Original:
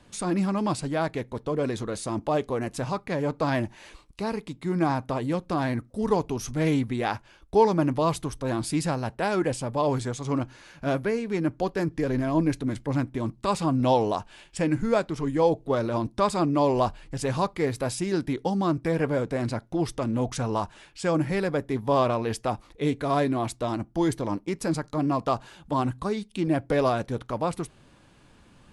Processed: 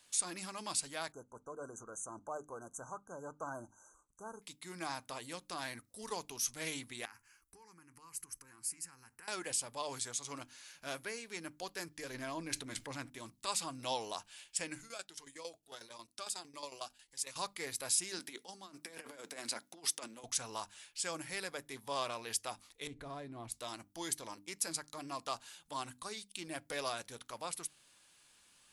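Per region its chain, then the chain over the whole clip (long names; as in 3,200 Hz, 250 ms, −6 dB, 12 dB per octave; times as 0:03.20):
0:01.12–0:04.42: de-essing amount 35% + linear-phase brick-wall band-stop 1,600–5,900 Hz + high-frequency loss of the air 78 metres
0:07.05–0:09.28: downward compressor 10 to 1, threshold −34 dBFS + phaser with its sweep stopped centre 1,500 Hz, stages 4
0:12.14–0:13.10: high-shelf EQ 5,900 Hz −8.5 dB + envelope flattener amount 50%
0:14.81–0:17.36: shaped tremolo saw down 11 Hz, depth 80% + low-shelf EQ 370 Hz −10.5 dB + phaser whose notches keep moving one way rising 1.6 Hz
0:18.19–0:20.24: high-pass filter 190 Hz 24 dB per octave + compressor whose output falls as the input rises −30 dBFS, ratio −0.5
0:22.87–0:23.52: spectral tilt −4.5 dB per octave + downward compressor 4 to 1, threshold −23 dBFS
whole clip: first-order pre-emphasis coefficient 0.97; mains-hum notches 50/100/150/200/250/300 Hz; level +3.5 dB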